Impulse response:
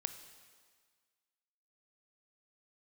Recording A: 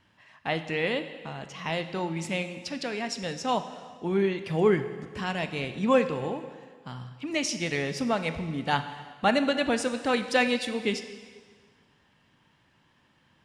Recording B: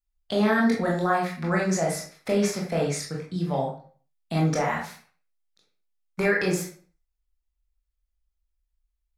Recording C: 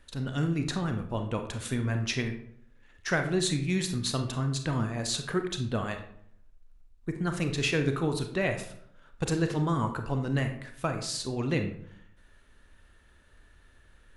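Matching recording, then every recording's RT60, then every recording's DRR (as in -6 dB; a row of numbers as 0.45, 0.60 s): A; 1.7, 0.45, 0.65 s; 9.0, -3.0, 5.5 dB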